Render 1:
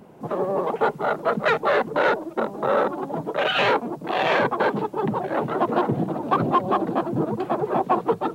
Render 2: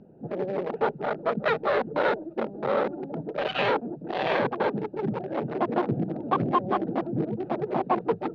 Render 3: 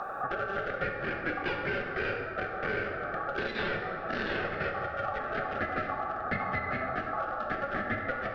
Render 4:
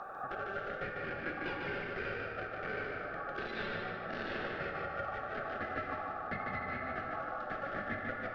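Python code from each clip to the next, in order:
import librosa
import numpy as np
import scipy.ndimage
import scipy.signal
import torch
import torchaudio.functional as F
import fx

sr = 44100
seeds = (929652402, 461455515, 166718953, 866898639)

y1 = fx.wiener(x, sr, points=41)
y1 = scipy.signal.sosfilt(scipy.signal.butter(4, 4900.0, 'lowpass', fs=sr, output='sos'), y1)
y1 = y1 * librosa.db_to_amplitude(-2.5)
y2 = y1 * np.sin(2.0 * np.pi * 980.0 * np.arange(len(y1)) / sr)
y2 = fx.rev_plate(y2, sr, seeds[0], rt60_s=1.3, hf_ratio=0.6, predelay_ms=0, drr_db=1.0)
y2 = fx.band_squash(y2, sr, depth_pct=100)
y2 = y2 * librosa.db_to_amplitude(-6.5)
y3 = fx.echo_feedback(y2, sr, ms=149, feedback_pct=43, wet_db=-3.5)
y3 = y3 * librosa.db_to_amplitude(-8.0)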